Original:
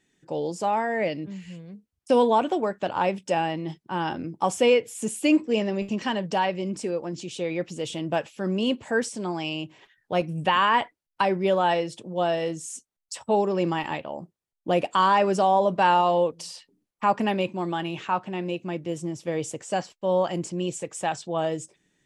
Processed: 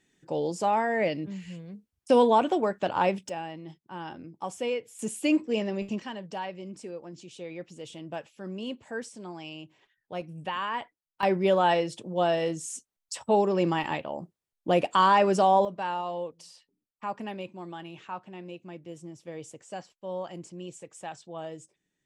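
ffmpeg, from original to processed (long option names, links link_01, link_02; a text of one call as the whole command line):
ffmpeg -i in.wav -af "asetnsamples=nb_out_samples=441:pad=0,asendcmd='3.29 volume volume -11dB;4.99 volume volume -4dB;6 volume volume -11dB;11.23 volume volume -0.5dB;15.65 volume volume -12dB',volume=-0.5dB" out.wav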